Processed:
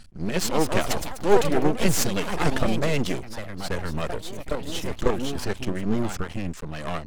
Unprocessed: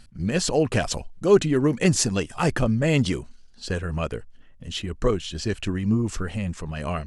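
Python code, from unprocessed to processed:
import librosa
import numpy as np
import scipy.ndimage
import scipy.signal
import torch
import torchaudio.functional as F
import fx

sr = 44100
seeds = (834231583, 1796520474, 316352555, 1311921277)

y = np.maximum(x, 0.0)
y = fx.echo_pitch(y, sr, ms=259, semitones=3, count=3, db_per_echo=-6.0)
y = y * 10.0 ** (2.5 / 20.0)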